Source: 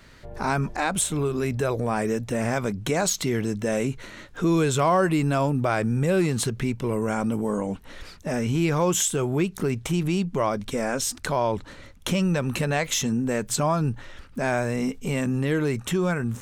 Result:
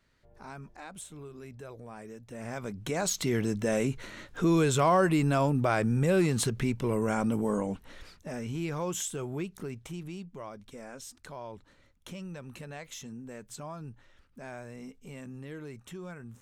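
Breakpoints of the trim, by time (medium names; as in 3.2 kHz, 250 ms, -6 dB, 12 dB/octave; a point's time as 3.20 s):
2.21 s -20 dB
2.51 s -12.5 dB
3.34 s -3 dB
7.57 s -3 dB
8.32 s -11 dB
9.35 s -11 dB
10.40 s -18.5 dB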